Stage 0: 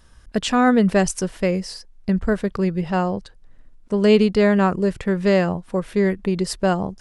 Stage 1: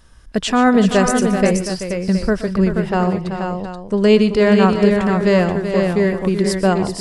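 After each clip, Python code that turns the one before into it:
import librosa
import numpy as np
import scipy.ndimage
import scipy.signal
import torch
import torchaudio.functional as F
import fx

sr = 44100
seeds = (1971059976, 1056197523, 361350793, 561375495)

y = fx.echo_multitap(x, sr, ms=(122, 125, 145, 382, 480, 718), db=(-17.0, -18.5, -19.5, -9.5, -5.5, -12.5))
y = F.gain(torch.from_numpy(y), 2.5).numpy()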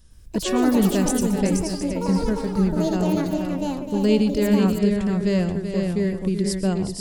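y = fx.peak_eq(x, sr, hz=1100.0, db=-14.5, octaves=2.8)
y = fx.echo_pitch(y, sr, ms=107, semitones=7, count=2, db_per_echo=-6.0)
y = F.gain(torch.from_numpy(y), -1.5).numpy()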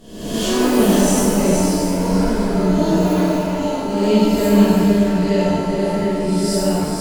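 y = fx.spec_swells(x, sr, rise_s=0.86)
y = fx.rev_shimmer(y, sr, seeds[0], rt60_s=1.2, semitones=7, shimmer_db=-8, drr_db=-8.0)
y = F.gain(torch.from_numpy(y), -6.5).numpy()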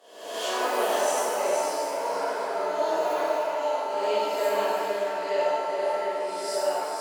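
y = scipy.signal.sosfilt(scipy.signal.butter(4, 580.0, 'highpass', fs=sr, output='sos'), x)
y = fx.high_shelf(y, sr, hz=2400.0, db=-11.5)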